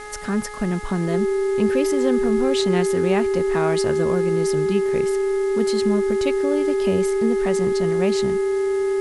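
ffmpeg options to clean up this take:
-af "adeclick=t=4,bandreject=f=419.1:t=h:w=4,bandreject=f=838.2:t=h:w=4,bandreject=f=1257.3:t=h:w=4,bandreject=f=1676.4:t=h:w=4,bandreject=f=2095.5:t=h:w=4,bandreject=f=390:w=30,afwtdn=0.0063"

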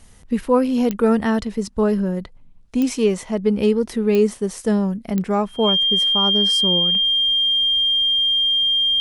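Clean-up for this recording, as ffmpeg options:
-af "adeclick=t=4,bandreject=f=3200:w=30"

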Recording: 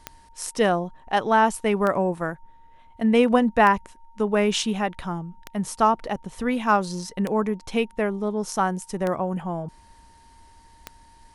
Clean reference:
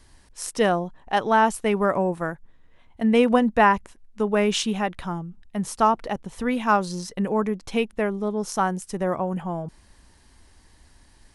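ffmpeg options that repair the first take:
-af "adeclick=t=4,bandreject=f=920:w=30"

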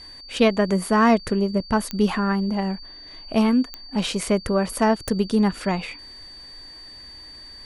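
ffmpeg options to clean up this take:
-af "adeclick=t=4,bandreject=f=4600:w=30"

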